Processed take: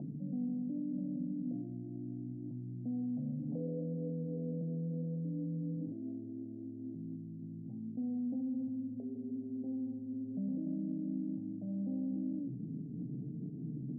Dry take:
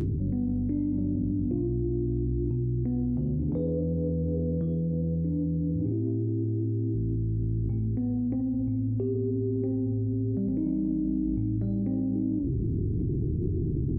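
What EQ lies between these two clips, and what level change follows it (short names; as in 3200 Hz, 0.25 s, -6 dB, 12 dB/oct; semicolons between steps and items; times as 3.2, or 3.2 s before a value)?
elliptic band-pass 120–710 Hz, stop band 40 dB; fixed phaser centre 370 Hz, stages 6; -6.5 dB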